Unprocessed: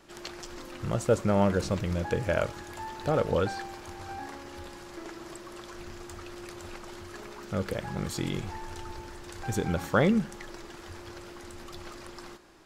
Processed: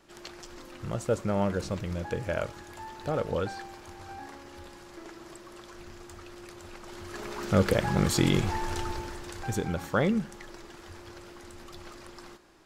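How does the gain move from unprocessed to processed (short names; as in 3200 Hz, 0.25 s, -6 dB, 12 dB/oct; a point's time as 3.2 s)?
6.73 s -3.5 dB
7.45 s +8 dB
8.79 s +8 dB
9.73 s -2.5 dB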